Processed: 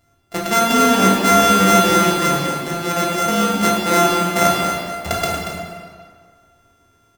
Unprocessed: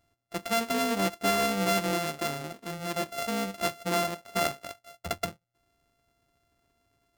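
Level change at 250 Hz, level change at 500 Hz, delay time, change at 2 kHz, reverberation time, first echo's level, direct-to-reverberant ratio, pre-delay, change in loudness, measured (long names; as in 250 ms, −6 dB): +14.5 dB, +12.0 dB, 233 ms, +12.5 dB, 1.9 s, −7.0 dB, −4.5 dB, 14 ms, +14.0 dB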